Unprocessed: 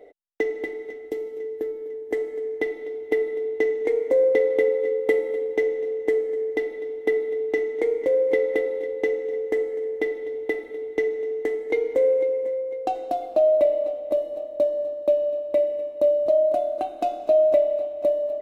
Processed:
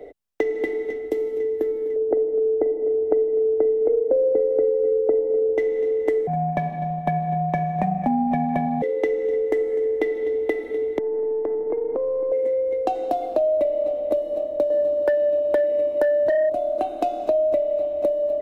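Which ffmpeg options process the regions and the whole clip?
-filter_complex "[0:a]asettb=1/sr,asplit=3[s0][s1][s2];[s0]atrim=end=1.964[s3];[s1]atrim=start=1.96:end=5.58,asetpts=PTS-STARTPTS,afade=t=in:d=0.004:c=qsin,afade=t=out:st=3.616:d=0.004:c=qsin,lowpass=f=610:t=q:w=2.3,asplit=2[s4][s5];[s5]adelay=43,volume=0.224[s6];[s4][s6]amix=inputs=2:normalize=0,atrim=end_sample=159642[s7];[s2]atrim=start=5.576[s8];[s3][s7]acrossfade=d=0.004:c1=hsin:c2=qsin[s9];[s9][s8]acrossfade=d=0.004:c1=qsin:c2=hsin,asettb=1/sr,asplit=3[s10][s11][s12];[s10]atrim=end=6.274[s13];[s11]atrim=start=6.27:end=8.82,asetpts=PTS-STARTPTS,afade=t=in:d=0.004:c=qsin,afade=t=out:st=2.546:d=0.004:c=qsin,aeval=exprs='val(0)*sin(2*PI*280*n/s)':c=same,tiltshelf=f=1200:g=4.5[s14];[s12]atrim=start=8.816[s15];[s13][s14]acrossfade=d=0.004:c1=hsin:c2=qsin[s16];[s16][s15]acrossfade=d=0.004:c1=qsin:c2=hsin,asettb=1/sr,asplit=3[s17][s18][s19];[s17]atrim=end=10.984[s20];[s18]atrim=start=10.98:end=12.32,asetpts=PTS-STARTPTS,afade=t=in:d=0.004:c=qsin,afade=t=out:st=1.336:d=0.004:c=qsin,aeval=exprs='if(lt(val(0),0),0.708*val(0),val(0))':c=same,lowpass=f=1200:w=0.5412,lowpass=f=1200:w=1.3066,acompressor=threshold=0.0398:ratio=6:attack=3.2:release=140:knee=1:detection=peak[s21];[s19]atrim=start=12.316[s22];[s20][s21]acrossfade=d=0.004:c1=hsin:c2=qsin[s23];[s23][s22]acrossfade=d=0.004:c1=qsin:c2=hsin,asettb=1/sr,asplit=3[s24][s25][s26];[s24]atrim=end=14.704[s27];[s25]atrim=start=14.7:end=16.5,asetpts=PTS-STARTPTS,afade=t=in:d=0.004:c=qsin,afade=t=out:st=1.796:d=0.004:c=qsin,highpass=f=150:p=1,aeval=exprs='0.282*sin(PI/2*1.58*val(0)/0.282)':c=same[s28];[s26]atrim=start=16.496[s29];[s27][s28]acrossfade=d=0.004:c1=hsin:c2=qsin[s30];[s30][s29]acrossfade=d=0.004:c1=qsin:c2=hsin,lowshelf=f=280:g=11.5,acrossover=split=100|210[s31][s32][s33];[s31]acompressor=threshold=0.00126:ratio=4[s34];[s32]acompressor=threshold=0.00141:ratio=4[s35];[s33]acompressor=threshold=0.0562:ratio=4[s36];[s34][s35][s36]amix=inputs=3:normalize=0,volume=1.78"

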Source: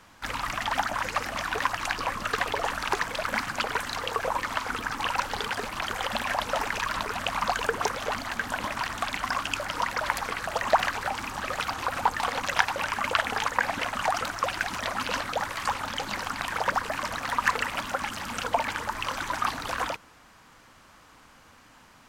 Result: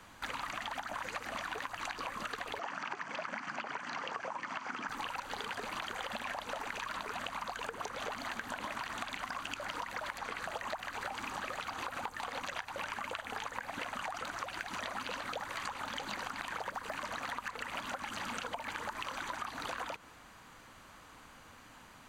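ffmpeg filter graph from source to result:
-filter_complex "[0:a]asettb=1/sr,asplit=3[s0][s1][s2];[s0]atrim=end=2.594[s3];[s1]atrim=start=2.59:end=4.89,asetpts=PTS-STARTPTS,afade=t=in:d=0.004:c=qsin,afade=t=out:st=2.296:d=0.004:c=qsin,acrossover=split=3600[s4][s5];[s5]acompressor=threshold=0.00794:ratio=4:attack=1:release=60[s6];[s4][s6]amix=inputs=2:normalize=0,highpass=f=160:w=0.5412,highpass=f=160:w=1.3066,equalizer=f=470:t=q:w=4:g=-8,equalizer=f=3800:t=q:w=4:g=-9,equalizer=f=5400:t=q:w=4:g=4,lowpass=f=6300:w=0.5412,lowpass=f=6300:w=1.3066[s7];[s2]atrim=start=4.886[s8];[s3][s7]acrossfade=d=0.004:c1=hsin:c2=qsin[s9];[s9][s8]acrossfade=d=0.004:c1=qsin:c2=hsin,acrossover=split=160|7800[s10][s11][s12];[s10]acompressor=threshold=0.00178:ratio=4[s13];[s11]acompressor=threshold=0.0316:ratio=4[s14];[s12]acompressor=threshold=0.00141:ratio=4[s15];[s13][s14][s15]amix=inputs=3:normalize=0,bandreject=f=5300:w=7.4,acompressor=threshold=0.0178:ratio=6,volume=0.891"

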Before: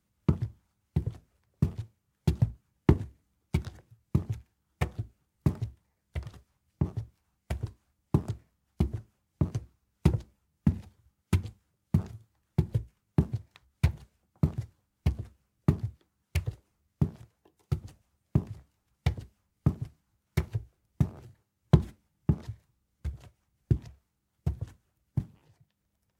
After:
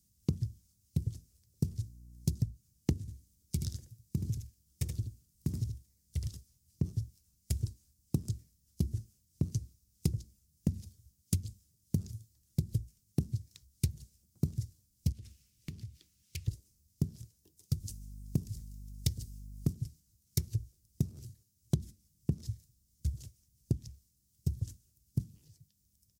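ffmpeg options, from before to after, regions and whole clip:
-filter_complex "[0:a]asettb=1/sr,asplit=3[s0][s1][s2];[s0]atrim=end=1.704[s3];[s1]atrim=start=1.7:end=2.41,asetpts=PTS-STARTPTS,afade=t=in:d=0.004:c=qsin,afade=t=out:st=0.706:d=0.004:c=qsin,equalizer=f=3000:w=1.8:g=-4,aeval=exprs='val(0)+0.00178*(sin(2*PI*60*n/s)+sin(2*PI*2*60*n/s)/2+sin(2*PI*3*60*n/s)/3+sin(2*PI*4*60*n/s)/4+sin(2*PI*5*60*n/s)/5)':c=same[s4];[s2]atrim=start=2.406[s5];[s3][s4]acrossfade=d=0.004:c1=hsin:c2=qsin[s6];[s6][s5]acrossfade=d=0.004:c1=qsin:c2=hsin,asettb=1/sr,asplit=3[s7][s8][s9];[s7]atrim=end=3.004[s10];[s8]atrim=start=3:end=6.28,asetpts=PTS-STARTPTS,afade=t=in:d=0.004:c=qsin,afade=t=out:st=3.276:d=0.004:c=qsin,acompressor=threshold=0.0251:ratio=2:attack=3.2:release=140:knee=1:detection=peak,aecho=1:1:76:0.447,atrim=end_sample=144648[s11];[s9]atrim=start=6.276[s12];[s10][s11]acrossfade=d=0.004:c1=hsin:c2=qsin[s13];[s13][s12]acrossfade=d=0.004:c1=qsin:c2=hsin,asettb=1/sr,asplit=3[s14][s15][s16];[s14]atrim=end=15.124[s17];[s15]atrim=start=15.12:end=16.48,asetpts=PTS-STARTPTS,afade=t=in:d=0.004:c=qsin,afade=t=out:st=1.356:d=0.004:c=qsin,acompressor=threshold=0.00447:ratio=3:attack=3.2:release=140:knee=1:detection=peak,equalizer=f=2500:w=0.82:g=15[s18];[s16]atrim=start=16.476[s19];[s17][s18]acrossfade=d=0.004:c1=hsin:c2=qsin[s20];[s20][s19]acrossfade=d=0.004:c1=qsin:c2=hsin,asettb=1/sr,asplit=3[s21][s22][s23];[s21]atrim=end=17.804[s24];[s22]atrim=start=17.8:end=19.73,asetpts=PTS-STARTPTS,afade=t=in:d=0.004:c=qsin,afade=t=out:st=1.926:d=0.004:c=qsin,highshelf=f=4300:g=7,aeval=exprs='val(0)+0.00355*(sin(2*PI*50*n/s)+sin(2*PI*2*50*n/s)/2+sin(2*PI*3*50*n/s)/3+sin(2*PI*4*50*n/s)/4+sin(2*PI*5*50*n/s)/5)':c=same[s25];[s23]atrim=start=19.726[s26];[s24][s25]acrossfade=d=0.004:c1=hsin:c2=qsin[s27];[s27][s26]acrossfade=d=0.004:c1=qsin:c2=hsin,firequalizer=gain_entry='entry(100,0);entry(780,-25);entry(5200,8)':delay=0.05:min_phase=1,acompressor=threshold=0.0282:ratio=6,volume=1.58"

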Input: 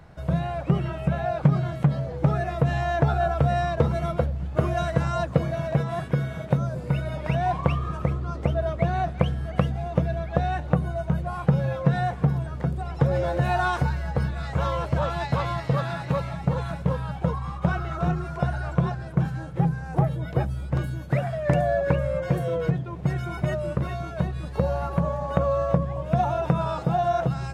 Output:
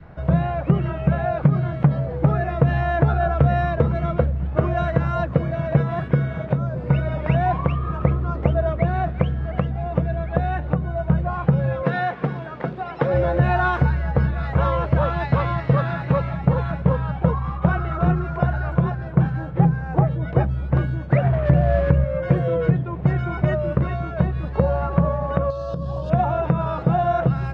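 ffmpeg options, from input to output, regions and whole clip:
-filter_complex "[0:a]asettb=1/sr,asplit=3[s0][s1][s2];[s0]atrim=end=11.834[s3];[s1]atrim=start=11.83:end=13.14,asetpts=PTS-STARTPTS,afade=t=in:d=0.004:c=qsin,afade=t=out:st=1.306:d=0.004:c=qsin,highshelf=f=2100:g=8,acrusher=bits=7:mode=log:mix=0:aa=0.000001,highpass=250,lowpass=4900[s4];[s2]atrim=start=13.136[s5];[s3][s4]acrossfade=d=0.004:c1=hsin:c2=qsin[s6];[s6][s5]acrossfade=d=0.004:c1=qsin:c2=hsin,asettb=1/sr,asplit=3[s7][s8][s9];[s7]atrim=end=21.244[s10];[s8]atrim=start=21.24:end=22.04,asetpts=PTS-STARTPTS,afade=t=in:d=0.004:c=qsin,afade=t=out:st=0.796:d=0.004:c=qsin,highpass=f=40:w=0.5412,highpass=f=40:w=1.3066,aemphasis=mode=reproduction:type=bsi,aeval=exprs='sgn(val(0))*max(abs(val(0))-0.02,0)':c=same[s11];[s9]atrim=start=22.036[s12];[s10][s11]acrossfade=d=0.004:c1=hsin:c2=qsin[s13];[s13][s12]acrossfade=d=0.004:c1=qsin:c2=hsin,asettb=1/sr,asplit=3[s14][s15][s16];[s14]atrim=end=25.504[s17];[s15]atrim=start=25.5:end=26.1,asetpts=PTS-STARTPTS,afade=t=in:d=0.004:c=qsin,afade=t=out:st=0.596:d=0.004:c=qsin,asuperstop=centerf=2100:order=4:qfactor=3,highshelf=f=3100:t=q:w=3:g=14,acompressor=threshold=0.0447:ratio=12:attack=3.2:release=140:knee=1:detection=peak[s18];[s16]atrim=start=26.096[s19];[s17][s18]acrossfade=d=0.004:c1=hsin:c2=qsin[s20];[s20][s19]acrossfade=d=0.004:c1=qsin:c2=hsin,lowpass=2300,alimiter=limit=0.299:level=0:latency=1:release=397,adynamicequalizer=threshold=0.01:dfrequency=820:dqfactor=1.8:tfrequency=820:tqfactor=1.8:attack=5:release=100:ratio=0.375:range=2.5:mode=cutabove:tftype=bell,volume=2"

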